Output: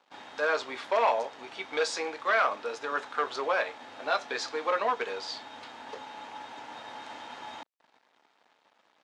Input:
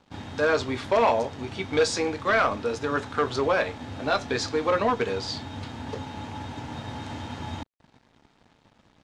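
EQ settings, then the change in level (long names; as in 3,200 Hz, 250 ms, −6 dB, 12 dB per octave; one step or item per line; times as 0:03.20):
high-pass filter 610 Hz 12 dB per octave
high-shelf EQ 4,900 Hz −7 dB
−1.5 dB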